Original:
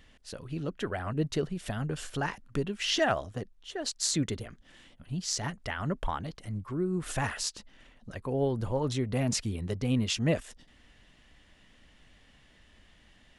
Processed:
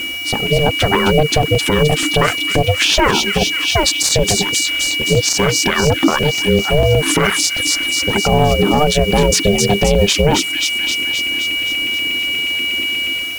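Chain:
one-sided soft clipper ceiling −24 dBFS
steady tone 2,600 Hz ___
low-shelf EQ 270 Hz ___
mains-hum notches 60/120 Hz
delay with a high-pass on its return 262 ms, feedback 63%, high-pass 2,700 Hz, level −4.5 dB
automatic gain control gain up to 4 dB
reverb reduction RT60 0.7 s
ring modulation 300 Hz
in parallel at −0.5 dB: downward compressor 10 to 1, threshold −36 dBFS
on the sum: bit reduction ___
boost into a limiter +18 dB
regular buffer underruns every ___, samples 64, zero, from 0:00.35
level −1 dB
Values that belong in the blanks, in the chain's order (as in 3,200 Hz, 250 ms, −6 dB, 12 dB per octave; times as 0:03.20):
−40 dBFS, +4 dB, 8 bits, 0.12 s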